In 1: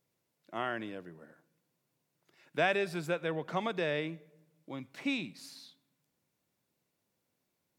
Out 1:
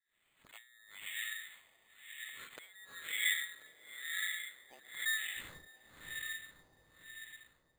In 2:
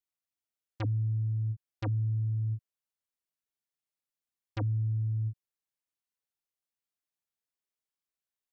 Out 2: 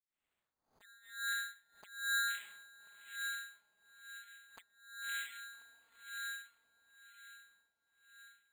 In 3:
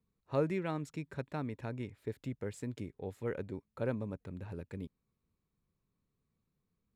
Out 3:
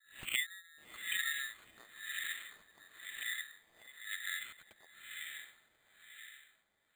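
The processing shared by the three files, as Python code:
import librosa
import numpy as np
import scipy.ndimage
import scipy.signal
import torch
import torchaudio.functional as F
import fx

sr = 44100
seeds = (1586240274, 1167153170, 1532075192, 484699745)

p1 = scipy.signal.sosfilt(scipy.signal.butter(2, 240.0, 'highpass', fs=sr, output='sos'), x)
p2 = fx.env_lowpass_down(p1, sr, base_hz=360.0, full_db=-34.5)
p3 = fx.auto_swell(p2, sr, attack_ms=104.0)
p4 = fx.harmonic_tremolo(p3, sr, hz=1.4, depth_pct=100, crossover_hz=440.0)
p5 = fx.wow_flutter(p4, sr, seeds[0], rate_hz=2.1, depth_cents=16.0)
p6 = fx.freq_invert(p5, sr, carrier_hz=4000)
p7 = p6 + fx.echo_diffused(p6, sr, ms=597, feedback_pct=55, wet_db=-3, dry=0)
p8 = fx.filter_lfo_lowpass(p7, sr, shape='sine', hz=1.0, low_hz=780.0, high_hz=3100.0, q=1.4)
p9 = np.repeat(p8[::8], 8)[:len(p8)]
p10 = fx.pre_swell(p9, sr, db_per_s=120.0)
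y = p10 * librosa.db_to_amplitude(11.5)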